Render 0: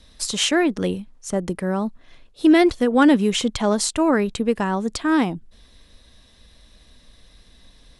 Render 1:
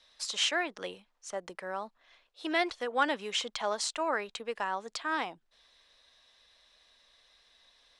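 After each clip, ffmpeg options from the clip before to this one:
-filter_complex "[0:a]acrossover=split=540 7100:gain=0.0631 1 0.178[a][b][c];[a][b][c]amix=inputs=3:normalize=0,volume=-6.5dB"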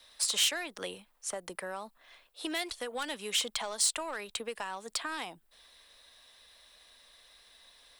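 -filter_complex "[0:a]asplit=2[a][b];[b]asoftclip=type=tanh:threshold=-26.5dB,volume=-3dB[c];[a][c]amix=inputs=2:normalize=0,acrossover=split=130|3000[d][e][f];[e]acompressor=threshold=-36dB:ratio=6[g];[d][g][f]amix=inputs=3:normalize=0,aexciter=amount=3.1:drive=7.7:freq=8.4k"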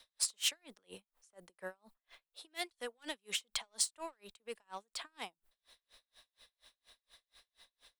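-af "aeval=exprs='val(0)*pow(10,-39*(0.5-0.5*cos(2*PI*4.2*n/s))/20)':c=same,volume=-1.5dB"

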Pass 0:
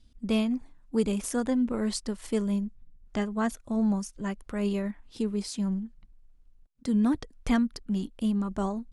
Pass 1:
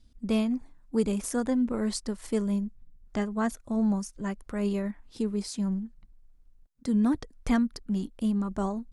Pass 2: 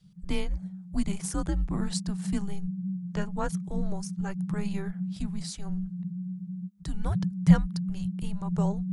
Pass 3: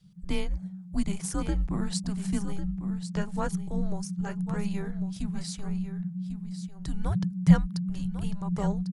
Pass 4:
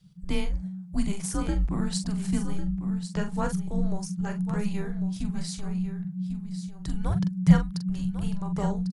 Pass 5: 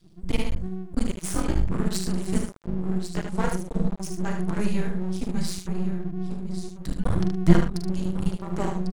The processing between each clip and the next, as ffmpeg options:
-af "equalizer=f=3k:t=o:w=0.7:g=-4"
-af "asubboost=boost=9:cutoff=58,afreqshift=-200"
-af "aecho=1:1:1098:0.282"
-filter_complex "[0:a]asplit=2[a][b];[b]adelay=43,volume=-8dB[c];[a][c]amix=inputs=2:normalize=0,volume=1dB"
-af "aeval=exprs='max(val(0),0)':c=same,aecho=1:1:75:0.501,volume=5dB"

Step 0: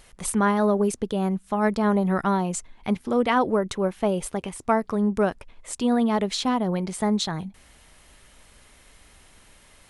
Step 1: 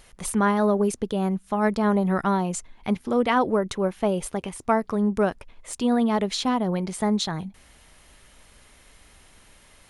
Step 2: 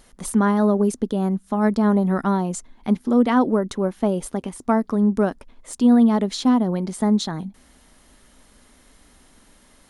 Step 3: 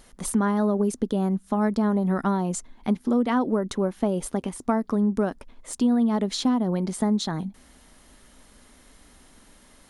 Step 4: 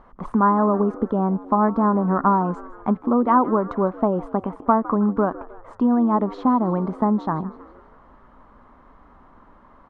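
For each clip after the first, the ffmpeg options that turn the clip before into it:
-af "deesser=0.4,bandreject=f=7.9k:w=22"
-af "equalizer=f=100:t=o:w=0.67:g=-6,equalizer=f=250:t=o:w=0.67:g=9,equalizer=f=2.5k:t=o:w=0.67:g=-6"
-af "acompressor=threshold=-20dB:ratio=3"
-filter_complex "[0:a]lowpass=f=1.1k:t=q:w=3.8,asplit=5[a][b][c][d][e];[b]adelay=158,afreqshift=84,volume=-18.5dB[f];[c]adelay=316,afreqshift=168,volume=-24.7dB[g];[d]adelay=474,afreqshift=252,volume=-30.9dB[h];[e]adelay=632,afreqshift=336,volume=-37.1dB[i];[a][f][g][h][i]amix=inputs=5:normalize=0,volume=2dB"

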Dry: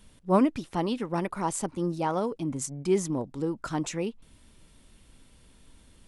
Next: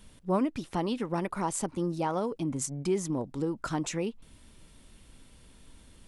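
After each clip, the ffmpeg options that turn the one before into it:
-af "acompressor=threshold=-30dB:ratio=2,volume=1.5dB"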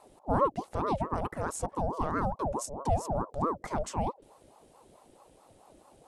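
-af "aeval=exprs='val(0)+0.00141*(sin(2*PI*50*n/s)+sin(2*PI*2*50*n/s)/2+sin(2*PI*3*50*n/s)/3+sin(2*PI*4*50*n/s)/4+sin(2*PI*5*50*n/s)/5)':c=same,equalizer=f=250:t=o:w=1:g=10,equalizer=f=500:t=o:w=1:g=10,equalizer=f=8k:t=o:w=1:g=5,aeval=exprs='val(0)*sin(2*PI*560*n/s+560*0.5/4.6*sin(2*PI*4.6*n/s))':c=same,volume=-6.5dB"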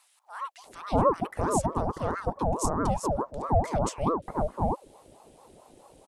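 -filter_complex "[0:a]acrossover=split=1400[a][b];[a]adelay=640[c];[c][b]amix=inputs=2:normalize=0,volume=4.5dB"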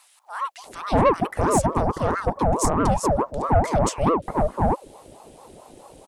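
-af "asoftclip=type=tanh:threshold=-18dB,volume=8dB"

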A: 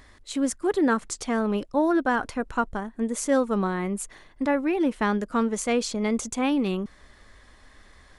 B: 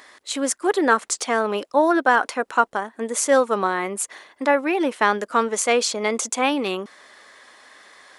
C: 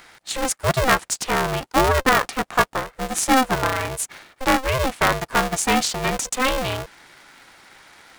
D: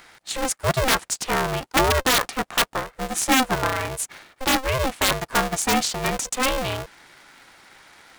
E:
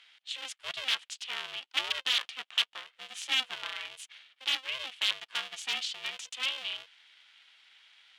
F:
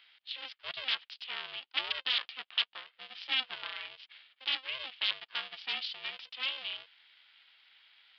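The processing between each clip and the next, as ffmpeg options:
-af "highpass=480,volume=8.5dB"
-af "aeval=exprs='val(0)*sgn(sin(2*PI*260*n/s))':c=same"
-af "aeval=exprs='(mod(2.51*val(0)+1,2)-1)/2.51':c=same,volume=-1.5dB"
-af "bandpass=f=3.1k:t=q:w=4:csg=0"
-af "aresample=11025,aresample=44100,volume=-2.5dB"

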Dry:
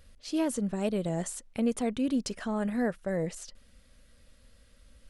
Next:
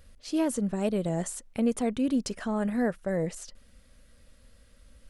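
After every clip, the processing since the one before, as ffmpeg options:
-af "equalizer=f=3.6k:t=o:w=1.6:g=-2.5,volume=2dB"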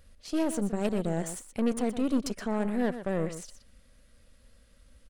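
-af "aeval=exprs='0.188*(cos(1*acos(clip(val(0)/0.188,-1,1)))-cos(1*PI/2))+0.015*(cos(3*acos(clip(val(0)/0.188,-1,1)))-cos(3*PI/2))+0.0119*(cos(8*acos(clip(val(0)/0.188,-1,1)))-cos(8*PI/2))':c=same,aecho=1:1:122:0.266"

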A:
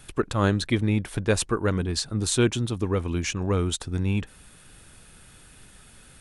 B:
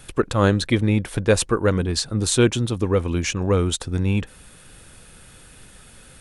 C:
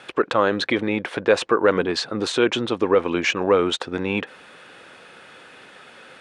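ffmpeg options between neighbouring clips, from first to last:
-af "equalizer=f=510:w=6.1:g=5.5,volume=4dB"
-af "alimiter=limit=-12.5dB:level=0:latency=1:release=49,highpass=400,lowpass=2.9k,volume=8.5dB"

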